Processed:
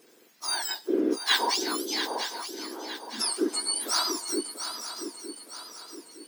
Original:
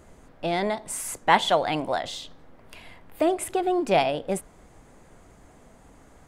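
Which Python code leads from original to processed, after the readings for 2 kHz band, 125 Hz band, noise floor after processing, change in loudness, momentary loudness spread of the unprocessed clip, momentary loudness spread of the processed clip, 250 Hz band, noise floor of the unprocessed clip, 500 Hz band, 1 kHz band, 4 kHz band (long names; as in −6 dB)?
−2.5 dB, below −20 dB, −58 dBFS, −3.0 dB, 12 LU, 16 LU, −1.5 dB, −54 dBFS, −7.5 dB, −8.5 dB, +5.5 dB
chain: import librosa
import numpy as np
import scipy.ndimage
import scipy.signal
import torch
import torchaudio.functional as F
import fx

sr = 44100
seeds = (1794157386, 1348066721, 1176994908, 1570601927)

y = fx.octave_mirror(x, sr, pivot_hz=1800.0)
y = fx.echo_swing(y, sr, ms=916, ratio=3, feedback_pct=44, wet_db=-9)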